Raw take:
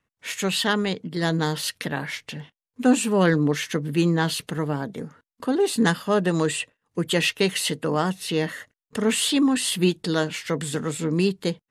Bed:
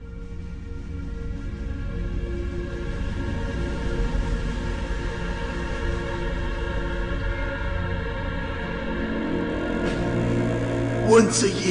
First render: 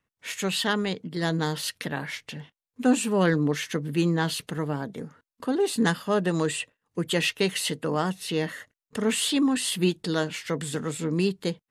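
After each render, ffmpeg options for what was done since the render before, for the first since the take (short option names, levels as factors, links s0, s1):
-af "volume=0.708"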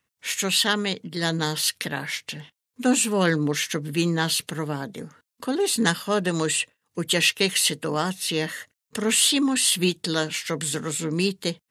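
-af "highpass=49,highshelf=f=2200:g=9.5"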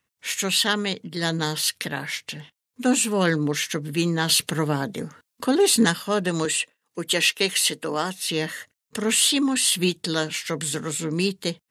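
-filter_complex "[0:a]asettb=1/sr,asplit=3[s0][s1][s2];[s0]atrim=end=6.454[s3];[s1]atrim=start=6.45:end=8.28,asetpts=PTS-STARTPTS,afade=t=in:d=0.004:c=qsin,afade=t=out:st=1.826:d=0.004:c=qsin,highpass=220[s4];[s2]atrim=start=8.276[s5];[s3][s4]acrossfade=d=0.004:c1=hsin:c2=qsin[s6];[s6][s5]acrossfade=d=0.004:c1=qsin:c2=hsin,asplit=3[s7][s8][s9];[s7]atrim=end=4.292[s10];[s8]atrim=start=4.288:end=5.852,asetpts=PTS-STARTPTS,volume=1.78[s11];[s9]atrim=start=5.848[s12];[s10][s11]acrossfade=d=0.004:c1=hsin:c2=hsin[s13];[s13][s12]acrossfade=d=0.004:c1=hsin:c2=hsin"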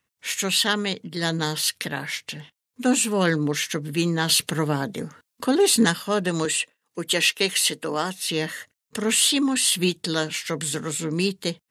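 -af anull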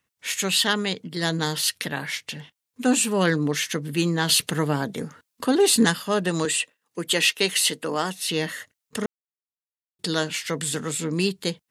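-filter_complex "[0:a]asplit=3[s0][s1][s2];[s0]atrim=end=9.06,asetpts=PTS-STARTPTS,afade=t=out:st=9.056:d=0.004:c=hsin[s3];[s1]atrim=start=9.06:end=9.99,asetpts=PTS-STARTPTS,volume=0[s4];[s2]atrim=start=9.99,asetpts=PTS-STARTPTS,afade=t=in:d=0.004:c=hsin[s5];[s3][s4][s5]concat=n=3:v=0:a=1"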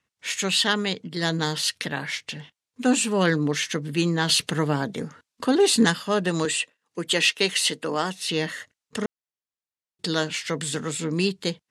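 -af "lowpass=8000"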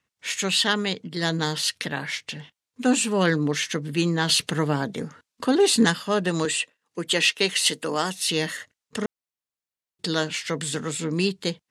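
-filter_complex "[0:a]asettb=1/sr,asplit=3[s0][s1][s2];[s0]atrim=end=7.664[s3];[s1]atrim=start=7.66:end=8.57,asetpts=PTS-STARTPTS,afade=t=in:d=0.004:c=qsin,afade=t=out:st=0.906:d=0.004:c=qsin,highshelf=f=6000:g=10[s4];[s2]atrim=start=8.566[s5];[s3][s4]acrossfade=d=0.004:c1=hsin:c2=qsin[s6];[s6][s5]acrossfade=d=0.004:c1=qsin:c2=hsin"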